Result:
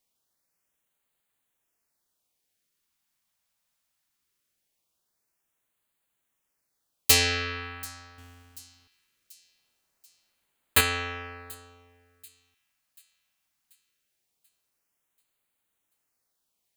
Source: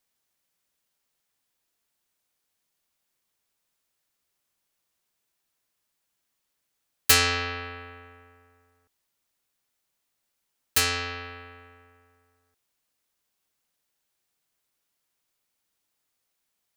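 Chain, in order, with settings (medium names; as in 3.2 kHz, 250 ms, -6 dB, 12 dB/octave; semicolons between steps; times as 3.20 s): 8.18–10.81 s: square wave that keeps the level; LFO notch sine 0.21 Hz 360–5600 Hz; feedback echo behind a high-pass 736 ms, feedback 50%, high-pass 5.1 kHz, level -19.5 dB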